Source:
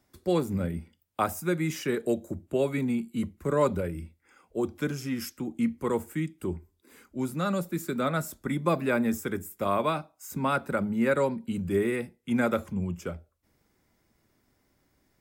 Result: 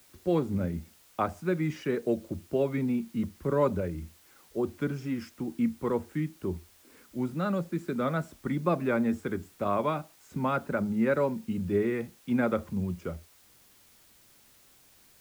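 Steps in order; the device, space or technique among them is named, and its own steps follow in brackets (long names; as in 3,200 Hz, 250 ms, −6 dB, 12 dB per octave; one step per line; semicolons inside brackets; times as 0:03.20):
cassette deck with a dirty head (head-to-tape spacing loss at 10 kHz 21 dB; tape wow and flutter; white noise bed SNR 29 dB)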